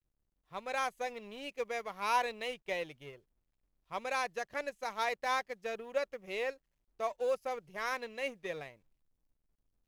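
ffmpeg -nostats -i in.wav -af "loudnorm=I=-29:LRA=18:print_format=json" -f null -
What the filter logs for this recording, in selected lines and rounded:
"input_i" : "-37.2",
"input_tp" : "-19.2",
"input_lra" : "2.9",
"input_thresh" : "-47.6",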